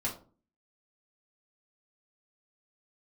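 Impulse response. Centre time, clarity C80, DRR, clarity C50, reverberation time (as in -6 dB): 20 ms, 15.5 dB, -5.5 dB, 9.5 dB, 0.40 s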